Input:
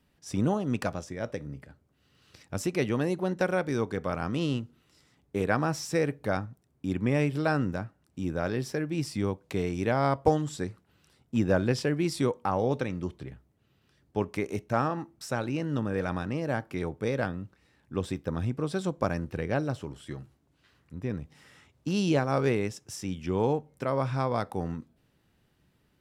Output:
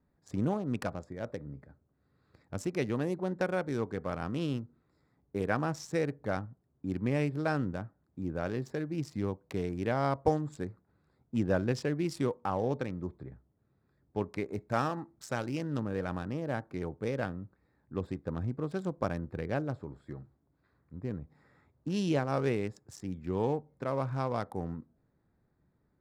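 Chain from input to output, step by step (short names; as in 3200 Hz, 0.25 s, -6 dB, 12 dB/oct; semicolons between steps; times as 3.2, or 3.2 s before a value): Wiener smoothing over 15 samples; 14.6–15.8 high shelf 2500 Hz +9 dB; gain -4 dB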